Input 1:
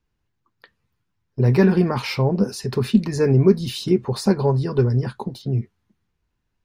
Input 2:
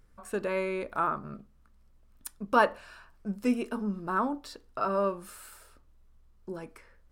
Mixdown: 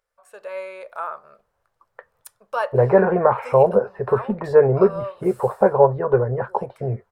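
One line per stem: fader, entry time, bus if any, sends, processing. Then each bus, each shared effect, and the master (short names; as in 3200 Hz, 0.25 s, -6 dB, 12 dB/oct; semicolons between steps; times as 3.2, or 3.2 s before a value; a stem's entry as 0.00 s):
+2.5 dB, 1.35 s, no send, de-esser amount 95%; LPF 1600 Hz 24 dB/oct
-8.5 dB, 0.00 s, no send, low shelf 350 Hz -9.5 dB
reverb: off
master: resonant low shelf 390 Hz -11.5 dB, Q 3; AGC gain up to 7 dB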